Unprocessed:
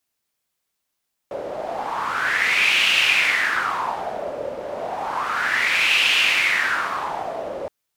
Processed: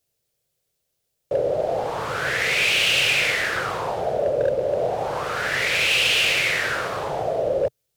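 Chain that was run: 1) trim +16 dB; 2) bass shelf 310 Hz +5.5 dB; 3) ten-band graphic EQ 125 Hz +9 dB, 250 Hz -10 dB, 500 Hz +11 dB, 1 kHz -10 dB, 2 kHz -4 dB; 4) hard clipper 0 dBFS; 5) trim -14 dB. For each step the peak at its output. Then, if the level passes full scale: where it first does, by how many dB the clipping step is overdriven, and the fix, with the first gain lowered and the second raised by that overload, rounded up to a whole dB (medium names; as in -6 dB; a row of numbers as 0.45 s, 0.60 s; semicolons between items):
+12.0 dBFS, +12.0 dBFS, +9.0 dBFS, 0.0 dBFS, -14.0 dBFS; step 1, 9.0 dB; step 1 +7 dB, step 5 -5 dB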